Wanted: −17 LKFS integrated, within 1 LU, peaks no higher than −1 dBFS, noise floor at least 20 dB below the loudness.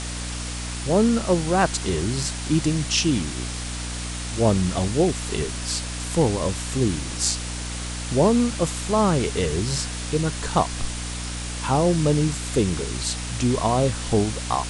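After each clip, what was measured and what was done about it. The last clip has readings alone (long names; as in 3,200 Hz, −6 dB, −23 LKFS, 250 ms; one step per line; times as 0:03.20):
mains hum 60 Hz; hum harmonics up to 300 Hz; level of the hum −29 dBFS; background noise floor −31 dBFS; target noise floor −44 dBFS; integrated loudness −23.5 LKFS; sample peak −4.5 dBFS; target loudness −17.0 LKFS
→ mains-hum notches 60/120/180/240/300 Hz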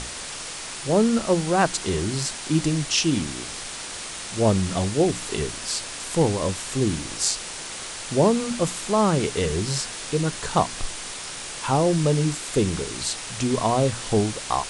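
mains hum none found; background noise floor −35 dBFS; target noise floor −44 dBFS
→ broadband denoise 9 dB, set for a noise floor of −35 dBFS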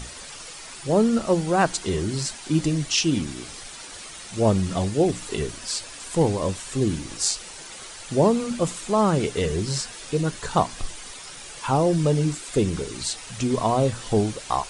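background noise floor −40 dBFS; target noise floor −44 dBFS
→ broadband denoise 6 dB, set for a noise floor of −40 dBFS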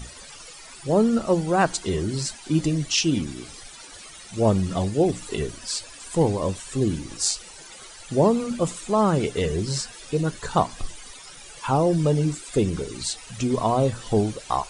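background noise floor −44 dBFS; integrated loudness −24.0 LKFS; sample peak −5.0 dBFS; target loudness −17.0 LKFS
→ level +7 dB
brickwall limiter −1 dBFS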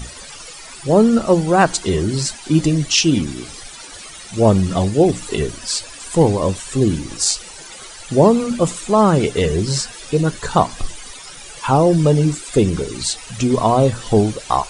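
integrated loudness −17.0 LKFS; sample peak −1.0 dBFS; background noise floor −37 dBFS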